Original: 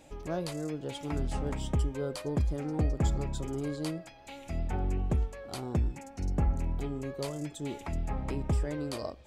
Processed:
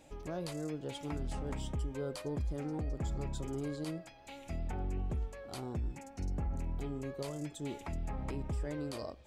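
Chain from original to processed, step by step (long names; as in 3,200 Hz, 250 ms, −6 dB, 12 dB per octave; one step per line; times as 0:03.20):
brickwall limiter −26 dBFS, peak gain reduction 7.5 dB
level −3.5 dB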